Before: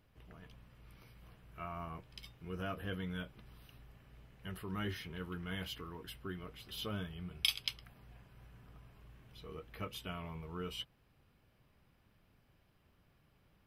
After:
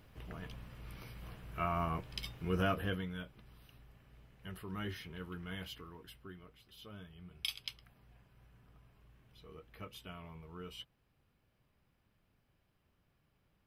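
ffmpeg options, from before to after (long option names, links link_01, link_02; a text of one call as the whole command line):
ffmpeg -i in.wav -af "volume=16.5dB,afade=type=out:start_time=2.59:duration=0.51:silence=0.281838,afade=type=out:start_time=5.44:duration=1.33:silence=0.281838,afade=type=in:start_time=6.77:duration=0.81:silence=0.421697" out.wav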